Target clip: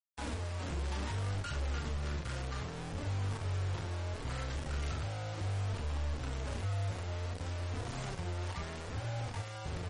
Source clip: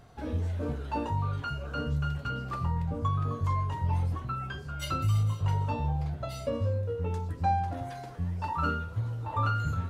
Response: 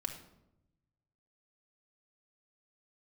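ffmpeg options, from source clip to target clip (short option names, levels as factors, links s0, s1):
-filter_complex "[0:a]asubboost=boost=8.5:cutoff=130,acrossover=split=160|2400[s0][s1][s2];[s0]acompressor=threshold=0.178:ratio=4[s3];[s1]acompressor=threshold=0.0158:ratio=4[s4];[s2]acompressor=threshold=0.002:ratio=4[s5];[s3][s4][s5]amix=inputs=3:normalize=0,alimiter=limit=0.0668:level=0:latency=1:release=172,acompressor=threshold=0.0316:ratio=16,acrusher=bits=5:mix=0:aa=0.000001,flanger=delay=3.3:depth=2.6:regen=60:speed=0.66:shape=triangular,asplit=2[s6][s7];[s7]aecho=0:1:31|42:0.355|0.447[s8];[s6][s8]amix=inputs=2:normalize=0" -ar 44100 -c:a libmp3lame -b:a 40k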